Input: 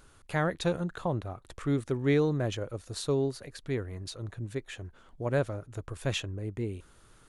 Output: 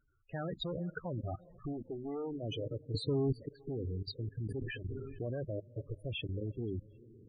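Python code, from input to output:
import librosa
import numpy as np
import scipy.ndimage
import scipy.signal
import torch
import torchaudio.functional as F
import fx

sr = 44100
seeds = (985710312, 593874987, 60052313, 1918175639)

y = fx.hum_notches(x, sr, base_hz=50, count=5)
y = fx.leveller(y, sr, passes=1)
y = fx.spec_gate(y, sr, threshold_db=-15, keep='strong')
y = fx.clip_asym(y, sr, top_db=-27.0, bottom_db=-21.0)
y = fx.echo_diffused(y, sr, ms=460, feedback_pct=47, wet_db=-16.0)
y = fx.level_steps(y, sr, step_db=19)
y = fx.peak_eq(y, sr, hz=130.0, db=-12.5, octaves=0.69, at=(1.72, 2.42), fade=0.02)
y = fx.spec_topn(y, sr, count=16)
y = fx.low_shelf(y, sr, hz=430.0, db=10.5, at=(2.94, 3.47))
y = fx.sustainer(y, sr, db_per_s=35.0, at=(4.39, 5.39))
y = F.gain(torch.from_numpy(y), 1.0).numpy()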